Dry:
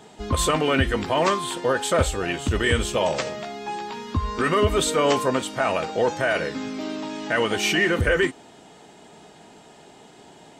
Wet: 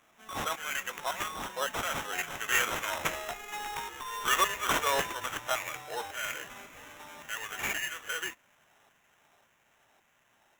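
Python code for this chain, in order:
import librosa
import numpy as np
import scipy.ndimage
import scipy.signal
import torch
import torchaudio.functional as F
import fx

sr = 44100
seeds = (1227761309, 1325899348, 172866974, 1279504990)

y = fx.doppler_pass(x, sr, speed_mps=18, closest_m=24.0, pass_at_s=3.66)
y = fx.filter_lfo_highpass(y, sr, shape='saw_down', hz=1.8, low_hz=790.0, high_hz=2200.0, q=0.82)
y = fx.sample_hold(y, sr, seeds[0], rate_hz=4600.0, jitter_pct=0)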